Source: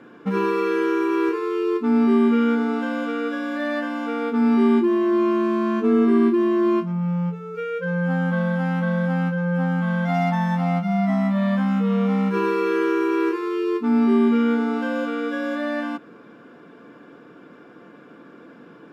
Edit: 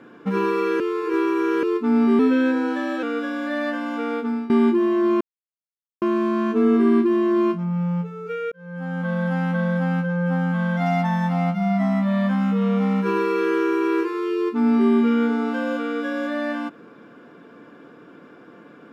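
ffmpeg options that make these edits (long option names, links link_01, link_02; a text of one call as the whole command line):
ffmpeg -i in.wav -filter_complex "[0:a]asplit=8[link_01][link_02][link_03][link_04][link_05][link_06][link_07][link_08];[link_01]atrim=end=0.802[link_09];[link_02]atrim=start=0.798:end=1.632,asetpts=PTS-STARTPTS,areverse[link_10];[link_03]atrim=start=1.628:end=2.194[link_11];[link_04]atrim=start=2.19:end=3.12,asetpts=PTS-STARTPTS,asetrate=48951,aresample=44100[link_12];[link_05]atrim=start=3.116:end=4.59,asetpts=PTS-STARTPTS,afade=type=out:start_time=1.104:duration=0.37:silence=0.1[link_13];[link_06]atrim=start=4.59:end=5.3,asetpts=PTS-STARTPTS,afade=type=in:duration=0.004:curve=hsin:silence=0.1,afade=type=out:start_time=0.706:duration=0.004:curve=hsin,apad=pad_dur=0.81[link_14];[link_07]atrim=start=5.3:end=7.8,asetpts=PTS-STARTPTS,afade=type=in:duration=0.004:curve=hsin,afade=type=out:start_time=2.496:duration=0.004:curve=hsin[link_15];[link_08]atrim=start=7.8,asetpts=PTS-STARTPTS,afade=type=in:duration=0.77[link_16];[link_09][link_10]acrossfade=duration=0.004:curve1=hsin:curve2=hsin[link_17];[link_17][link_11]acrossfade=duration=0.004:curve1=hsin:curve2=hsin[link_18];[link_18][link_12]acrossfade=duration=0.004:curve1=hsin:curve2=hsin[link_19];[link_13][link_14][link_15][link_16]concat=n=4:v=0:a=1[link_20];[link_19][link_20]acrossfade=duration=0.004:curve1=hsin:curve2=hsin" out.wav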